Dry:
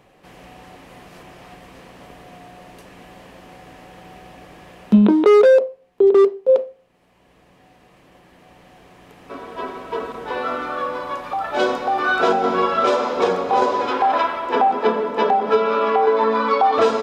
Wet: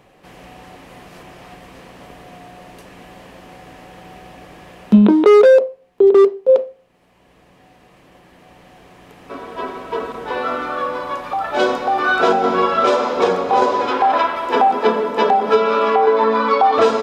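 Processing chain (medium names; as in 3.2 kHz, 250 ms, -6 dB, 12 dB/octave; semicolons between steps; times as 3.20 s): 14.36–15.95 s: treble shelf 5.6 kHz +8.5 dB; trim +2.5 dB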